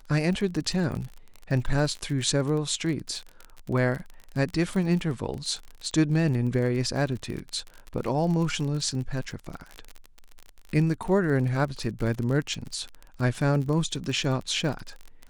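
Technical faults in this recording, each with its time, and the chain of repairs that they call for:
crackle 37 per s -31 dBFS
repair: de-click

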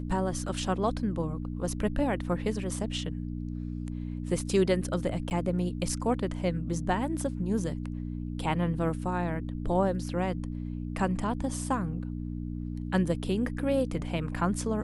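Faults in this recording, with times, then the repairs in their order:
hum 60 Hz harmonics 5 -35 dBFS
5.30–5.31 s: dropout 9.5 ms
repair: de-hum 60 Hz, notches 5; interpolate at 5.30 s, 9.5 ms

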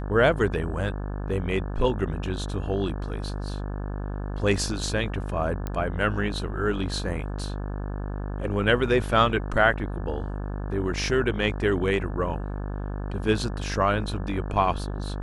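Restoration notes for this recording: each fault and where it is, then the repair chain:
buzz 50 Hz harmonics 35 -31 dBFS
5.67 s: pop -17 dBFS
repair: de-click; de-hum 50 Hz, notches 35

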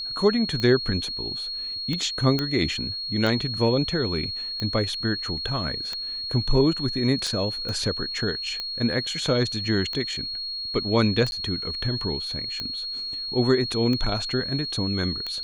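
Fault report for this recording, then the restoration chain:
tick 45 rpm -16 dBFS
whine 4.3 kHz -29 dBFS
2.39 s: pop -11 dBFS
7.69 s: pop -20 dBFS
11.31–11.32 s: dropout 11 ms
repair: de-click; band-stop 4.3 kHz, Q 30; interpolate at 11.31 s, 11 ms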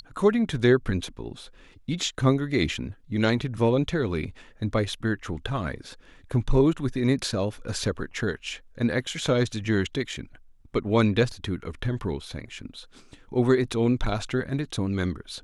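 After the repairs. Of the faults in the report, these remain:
nothing left

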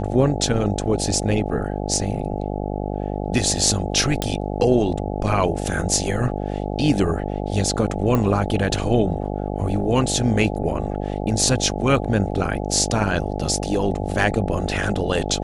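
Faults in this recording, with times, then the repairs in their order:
buzz 50 Hz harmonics 17 -26 dBFS
4.22 s: pop -8 dBFS
8.15 s: pop -9 dBFS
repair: de-click; de-hum 50 Hz, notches 17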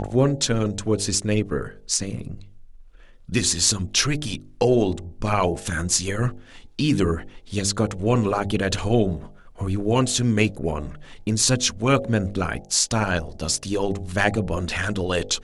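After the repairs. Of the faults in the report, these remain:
8.15 s: pop

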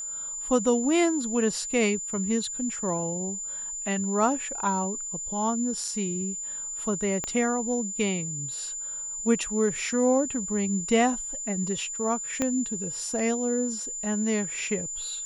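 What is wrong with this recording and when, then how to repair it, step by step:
whine 7.1 kHz -32 dBFS
7.24 s: pop -16 dBFS
12.42 s: pop -12 dBFS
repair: de-click; band-stop 7.1 kHz, Q 30

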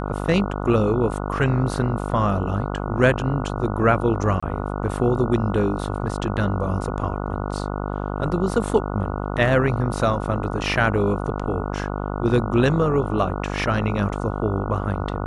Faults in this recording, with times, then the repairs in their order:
buzz 50 Hz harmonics 29 -27 dBFS
4.40–4.42 s: dropout 25 ms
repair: de-hum 50 Hz, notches 29; interpolate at 4.40 s, 25 ms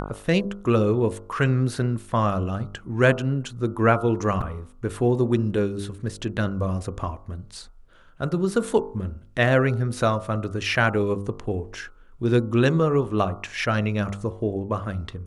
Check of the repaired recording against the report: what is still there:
nothing left

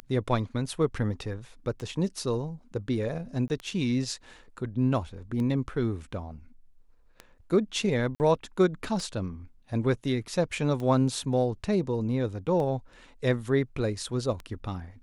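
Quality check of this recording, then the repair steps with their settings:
tick 33 1/3 rpm -23 dBFS
3.48–3.50 s: dropout 19 ms
8.15–8.20 s: dropout 49 ms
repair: de-click; interpolate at 3.48 s, 19 ms; interpolate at 8.15 s, 49 ms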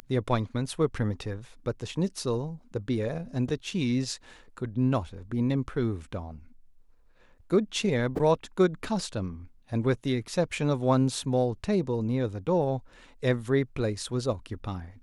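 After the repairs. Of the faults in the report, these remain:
nothing left

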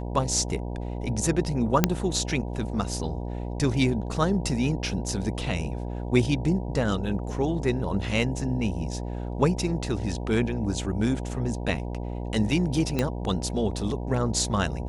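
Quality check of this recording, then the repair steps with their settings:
buzz 60 Hz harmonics 16 -32 dBFS
1.84 s: pop -3 dBFS
12.99 s: pop -11 dBFS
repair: de-click; de-hum 60 Hz, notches 16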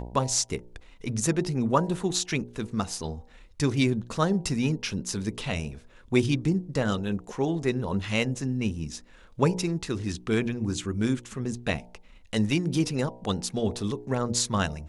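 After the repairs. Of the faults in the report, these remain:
nothing left

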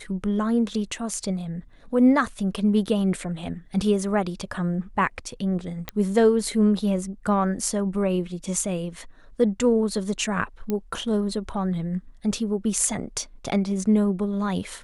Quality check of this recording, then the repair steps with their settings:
5.89 s: pop -13 dBFS
10.70 s: pop -14 dBFS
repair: de-click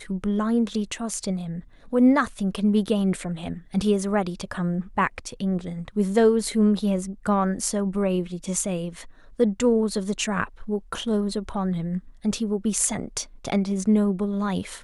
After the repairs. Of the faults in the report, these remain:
nothing left

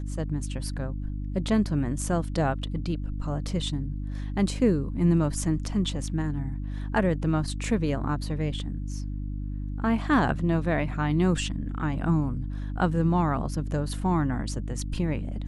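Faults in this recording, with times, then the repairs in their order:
hum 50 Hz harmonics 6 -32 dBFS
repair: de-hum 50 Hz, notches 6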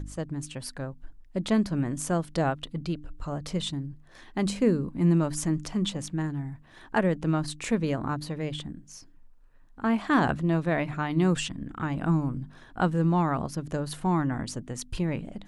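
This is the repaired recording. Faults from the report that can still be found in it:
nothing left

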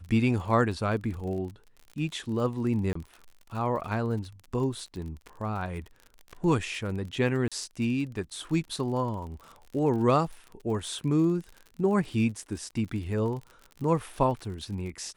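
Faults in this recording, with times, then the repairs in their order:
crackle 46 per s -37 dBFS
2.93–2.95 s: dropout 24 ms
7.48–7.52 s: dropout 36 ms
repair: de-click; interpolate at 2.93 s, 24 ms; interpolate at 7.48 s, 36 ms

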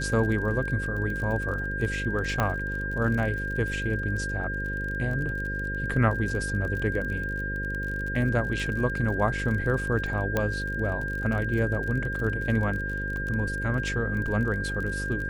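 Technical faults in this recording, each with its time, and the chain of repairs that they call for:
buzz 50 Hz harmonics 11 -33 dBFS
crackle 35 per s -33 dBFS
whine 1.6 kHz -31 dBFS
2.40 s: pop -11 dBFS
10.37 s: pop -12 dBFS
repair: de-click; de-hum 50 Hz, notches 11; band-stop 1.6 kHz, Q 30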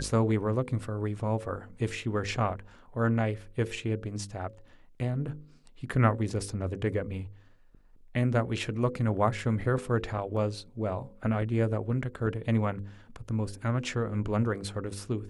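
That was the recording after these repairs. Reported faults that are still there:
10.37 s: pop

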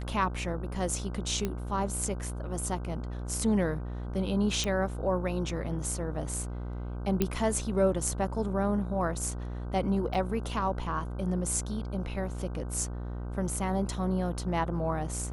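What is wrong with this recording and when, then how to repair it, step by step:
buzz 60 Hz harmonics 26 -36 dBFS
1.45 s: pop -17 dBFS
4.64 s: pop
7.22 s: pop -12 dBFS
10.14–10.15 s: dropout 6.8 ms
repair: de-click; de-hum 60 Hz, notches 26; interpolate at 10.14 s, 6.8 ms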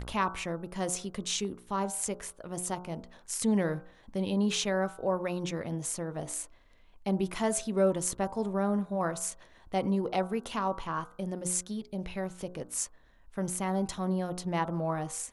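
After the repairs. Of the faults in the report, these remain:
nothing left

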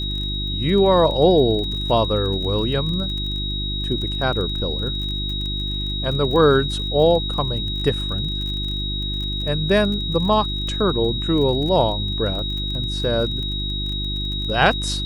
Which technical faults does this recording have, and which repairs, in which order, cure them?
crackle 26 per s -28 dBFS
hum 50 Hz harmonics 7 -27 dBFS
whine 3.8 kHz -26 dBFS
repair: de-click; de-hum 50 Hz, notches 7; band-stop 3.8 kHz, Q 30

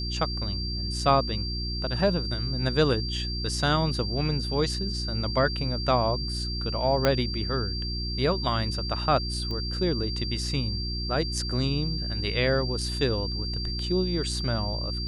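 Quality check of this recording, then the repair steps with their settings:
hum 60 Hz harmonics 6 -32 dBFS
whine 4.7 kHz -33 dBFS
7.05 s: pop -8 dBFS
9.51 s: pop -23 dBFS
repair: de-click; band-stop 4.7 kHz, Q 30; de-hum 60 Hz, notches 6

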